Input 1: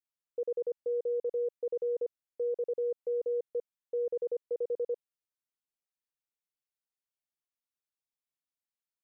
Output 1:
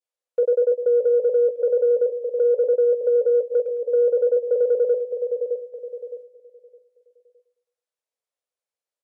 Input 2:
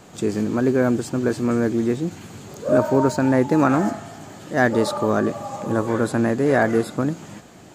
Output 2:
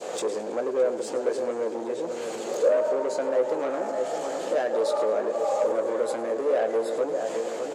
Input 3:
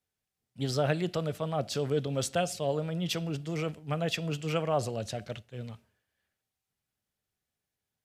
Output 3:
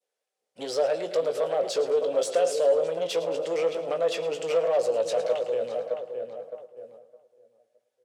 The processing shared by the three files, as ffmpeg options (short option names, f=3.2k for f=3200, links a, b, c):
-filter_complex "[0:a]acompressor=threshold=-31dB:ratio=4,asplit=2[a][b];[b]adelay=613,lowpass=f=1.5k:p=1,volume=-9dB,asplit=2[c][d];[d]adelay=613,lowpass=f=1.5k:p=1,volume=0.38,asplit=2[e][f];[f]adelay=613,lowpass=f=1.5k:p=1,volume=0.38,asplit=2[g][h];[h]adelay=613,lowpass=f=1.5k:p=1,volume=0.38[i];[c][e][g][i]amix=inputs=4:normalize=0[j];[a][j]amix=inputs=2:normalize=0,adynamicequalizer=threshold=0.00501:dfrequency=1400:dqfactor=0.95:tfrequency=1400:tqfactor=0.95:attack=5:release=100:ratio=0.375:range=1.5:mode=cutabove:tftype=bell,agate=range=-7dB:threshold=-59dB:ratio=16:detection=peak,asplit=2[k][l];[l]adelay=18,volume=-9dB[m];[k][m]amix=inputs=2:normalize=0,asoftclip=type=hard:threshold=-28.5dB,lowpass=f=11k:w=0.5412,lowpass=f=11k:w=1.3066,asplit=2[n][o];[o]aecho=0:1:108|216|324|432:0.2|0.0898|0.0404|0.0182[p];[n][p]amix=inputs=2:normalize=0,asoftclip=type=tanh:threshold=-27.5dB,alimiter=level_in=9.5dB:limit=-24dB:level=0:latency=1:release=57,volume=-9.5dB,highpass=f=510:t=q:w=4.9,volume=8dB"